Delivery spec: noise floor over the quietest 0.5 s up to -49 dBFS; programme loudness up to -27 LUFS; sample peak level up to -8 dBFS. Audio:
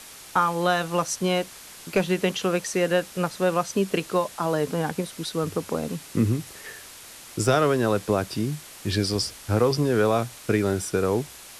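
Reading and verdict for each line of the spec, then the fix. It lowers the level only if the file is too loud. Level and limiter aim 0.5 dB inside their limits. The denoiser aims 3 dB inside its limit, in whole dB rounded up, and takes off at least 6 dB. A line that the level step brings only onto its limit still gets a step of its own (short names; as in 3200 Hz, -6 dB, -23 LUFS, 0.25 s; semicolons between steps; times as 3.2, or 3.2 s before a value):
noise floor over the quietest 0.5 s -44 dBFS: fail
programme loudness -25.0 LUFS: fail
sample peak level -9.5 dBFS: OK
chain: denoiser 6 dB, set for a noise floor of -44 dBFS; gain -2.5 dB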